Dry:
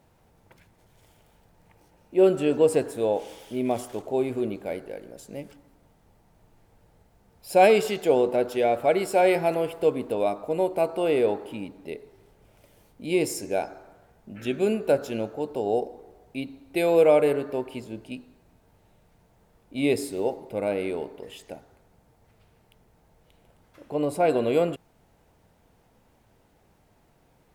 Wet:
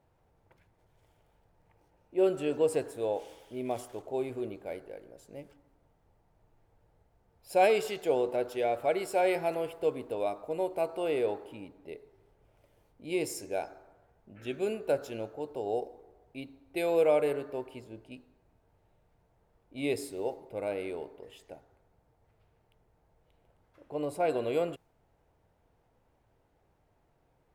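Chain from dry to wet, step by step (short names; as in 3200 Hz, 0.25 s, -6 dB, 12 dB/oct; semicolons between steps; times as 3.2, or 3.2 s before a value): bell 210 Hz -7 dB 0.76 oct; mismatched tape noise reduction decoder only; gain -6.5 dB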